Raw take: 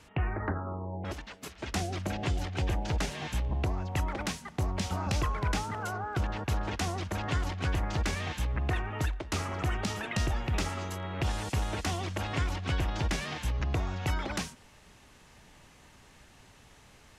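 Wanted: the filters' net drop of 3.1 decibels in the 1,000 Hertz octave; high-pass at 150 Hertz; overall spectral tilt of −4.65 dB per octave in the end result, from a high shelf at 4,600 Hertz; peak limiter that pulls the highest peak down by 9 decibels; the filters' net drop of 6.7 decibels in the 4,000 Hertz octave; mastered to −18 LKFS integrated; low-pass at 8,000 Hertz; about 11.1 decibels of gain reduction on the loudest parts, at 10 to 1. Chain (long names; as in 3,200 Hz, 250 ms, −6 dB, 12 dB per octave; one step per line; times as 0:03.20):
high-pass filter 150 Hz
low-pass filter 8,000 Hz
parametric band 1,000 Hz −3.5 dB
parametric band 4,000 Hz −5.5 dB
high-shelf EQ 4,600 Hz −6.5 dB
downward compressor 10 to 1, threshold −42 dBFS
level +29.5 dB
brickwall limiter −7 dBFS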